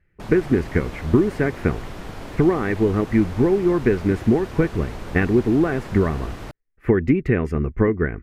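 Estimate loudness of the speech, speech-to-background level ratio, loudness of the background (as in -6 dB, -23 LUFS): -21.0 LUFS, 15.0 dB, -36.0 LUFS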